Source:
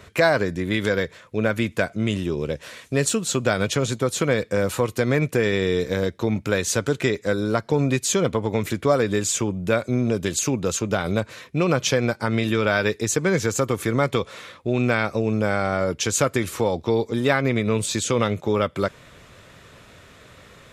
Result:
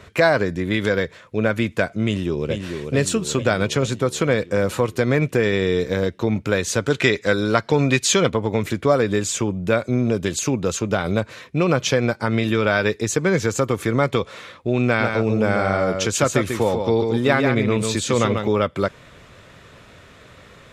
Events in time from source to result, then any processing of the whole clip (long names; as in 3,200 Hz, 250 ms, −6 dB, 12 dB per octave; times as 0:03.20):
0:02.05–0:02.55: delay throw 440 ms, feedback 65%, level −6 dB
0:06.90–0:08.30: parametric band 3,100 Hz +7.5 dB 3 octaves
0:14.86–0:18.48: single-tap delay 143 ms −5.5 dB
whole clip: high-shelf EQ 7,500 Hz −7.5 dB; level +2 dB